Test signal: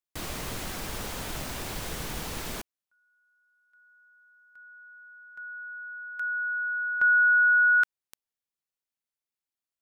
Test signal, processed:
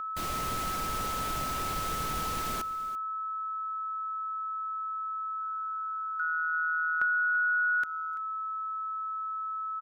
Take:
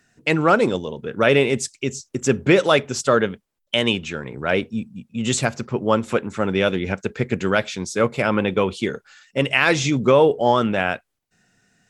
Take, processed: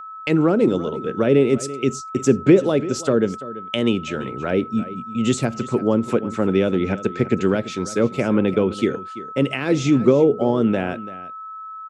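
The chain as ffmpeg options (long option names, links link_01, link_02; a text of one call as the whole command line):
ffmpeg -i in.wav -filter_complex "[0:a]adynamicequalizer=threshold=0.0251:dfrequency=310:dqfactor=0.85:tfrequency=310:tqfactor=0.85:attack=5:release=100:ratio=0.375:range=3.5:mode=boostabove:tftype=bell,agate=range=-24dB:threshold=-38dB:ratio=16:release=297:detection=peak,aeval=exprs='val(0)+0.0251*sin(2*PI*1300*n/s)':channel_layout=same,acrossover=split=470[link_01][link_02];[link_02]acompressor=threshold=-26dB:ratio=10:attack=27:release=286:knee=2.83:detection=peak[link_03];[link_01][link_03]amix=inputs=2:normalize=0,asplit=2[link_04][link_05];[link_05]aecho=0:1:337:0.158[link_06];[link_04][link_06]amix=inputs=2:normalize=0,volume=-1dB" out.wav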